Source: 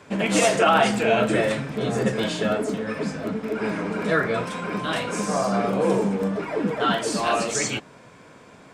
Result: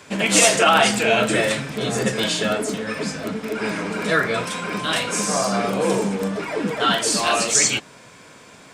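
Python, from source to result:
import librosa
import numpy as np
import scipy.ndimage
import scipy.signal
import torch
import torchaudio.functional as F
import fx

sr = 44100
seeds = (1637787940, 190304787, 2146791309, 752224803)

y = fx.high_shelf(x, sr, hz=2200.0, db=11.5)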